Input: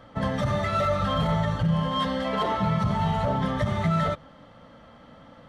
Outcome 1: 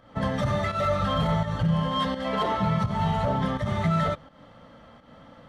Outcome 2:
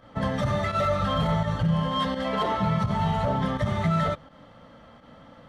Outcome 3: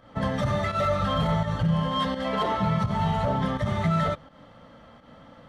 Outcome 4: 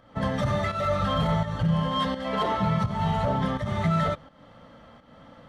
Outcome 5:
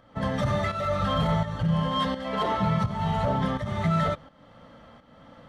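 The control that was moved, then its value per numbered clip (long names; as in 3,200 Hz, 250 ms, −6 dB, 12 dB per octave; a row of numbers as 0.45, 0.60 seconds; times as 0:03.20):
fake sidechain pumping, release: 193, 82, 128, 304, 469 milliseconds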